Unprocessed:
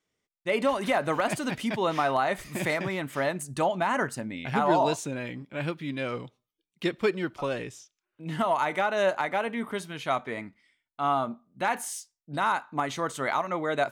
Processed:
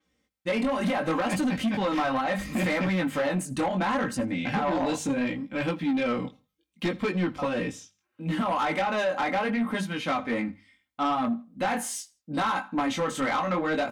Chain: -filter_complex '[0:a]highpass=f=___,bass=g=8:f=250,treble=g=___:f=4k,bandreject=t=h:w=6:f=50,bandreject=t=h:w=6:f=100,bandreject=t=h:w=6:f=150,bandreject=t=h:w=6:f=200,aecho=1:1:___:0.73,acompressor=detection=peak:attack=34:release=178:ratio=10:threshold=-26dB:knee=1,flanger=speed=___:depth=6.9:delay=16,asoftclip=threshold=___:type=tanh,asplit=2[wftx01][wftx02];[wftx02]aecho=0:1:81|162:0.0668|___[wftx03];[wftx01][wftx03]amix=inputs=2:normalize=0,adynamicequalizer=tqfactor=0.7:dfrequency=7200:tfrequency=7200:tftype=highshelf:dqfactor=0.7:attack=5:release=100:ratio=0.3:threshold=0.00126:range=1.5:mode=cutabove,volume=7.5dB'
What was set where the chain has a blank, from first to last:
46, -3, 3.8, 0.71, -28.5dB, 0.018